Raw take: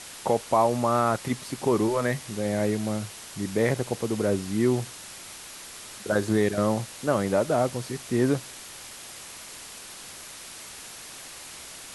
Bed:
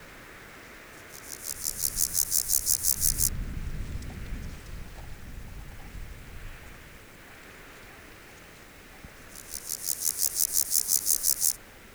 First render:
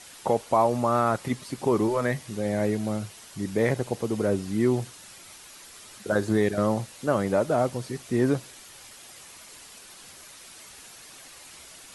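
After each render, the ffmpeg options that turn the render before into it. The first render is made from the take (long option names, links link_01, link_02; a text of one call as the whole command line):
ffmpeg -i in.wav -af "afftdn=noise_reduction=7:noise_floor=-43" out.wav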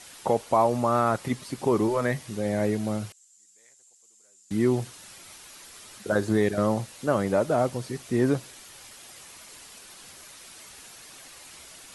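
ffmpeg -i in.wav -filter_complex "[0:a]asettb=1/sr,asplit=3[link_01][link_02][link_03];[link_01]atrim=end=3.124[link_04];[link_02]atrim=start=3.12:end=4.51,asetpts=PTS-STARTPTS,afade=type=in:duration=0.004:curve=qsin,afade=type=out:start_time=1.386:duration=0.004:curve=qsin,bandpass=frequency=7300:width_type=q:width=10[link_05];[link_03]atrim=start=4.506[link_06];[link_04][link_05]acrossfade=duration=0.004:curve1=hsin:curve2=qsin[link_07];[link_07][link_06]acrossfade=duration=0.004:curve1=qsin:curve2=hsin" out.wav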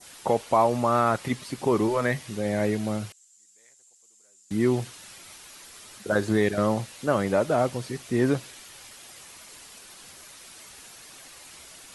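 ffmpeg -i in.wav -af "adynamicequalizer=threshold=0.0112:dfrequency=2600:dqfactor=0.71:tfrequency=2600:tqfactor=0.71:attack=5:release=100:ratio=0.375:range=2:mode=boostabove:tftype=bell" out.wav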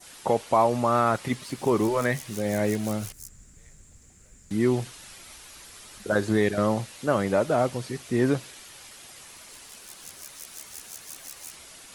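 ffmpeg -i in.wav -i bed.wav -filter_complex "[1:a]volume=-18.5dB[link_01];[0:a][link_01]amix=inputs=2:normalize=0" out.wav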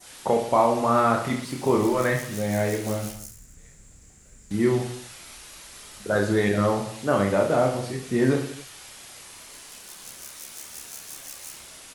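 ffmpeg -i in.wav -af "aecho=1:1:30|69|119.7|185.6|271.3:0.631|0.398|0.251|0.158|0.1" out.wav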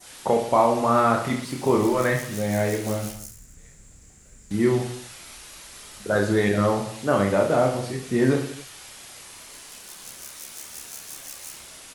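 ffmpeg -i in.wav -af "volume=1dB" out.wav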